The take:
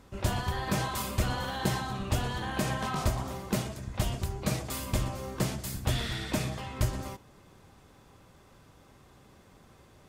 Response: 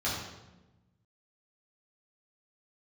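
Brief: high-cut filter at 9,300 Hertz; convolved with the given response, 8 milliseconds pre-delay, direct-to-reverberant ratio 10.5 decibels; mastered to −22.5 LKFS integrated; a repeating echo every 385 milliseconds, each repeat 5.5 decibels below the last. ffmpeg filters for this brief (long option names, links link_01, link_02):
-filter_complex "[0:a]lowpass=9300,aecho=1:1:385|770|1155|1540|1925|2310|2695:0.531|0.281|0.149|0.079|0.0419|0.0222|0.0118,asplit=2[link_01][link_02];[1:a]atrim=start_sample=2205,adelay=8[link_03];[link_02][link_03]afir=irnorm=-1:irlink=0,volume=-19dB[link_04];[link_01][link_04]amix=inputs=2:normalize=0,volume=8dB"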